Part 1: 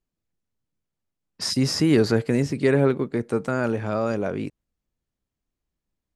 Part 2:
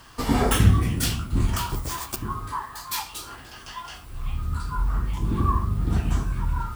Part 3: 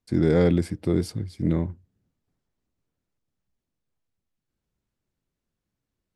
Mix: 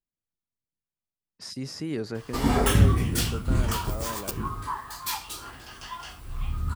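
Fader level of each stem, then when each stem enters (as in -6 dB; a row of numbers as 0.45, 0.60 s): -13.0 dB, -1.5 dB, off; 0.00 s, 2.15 s, off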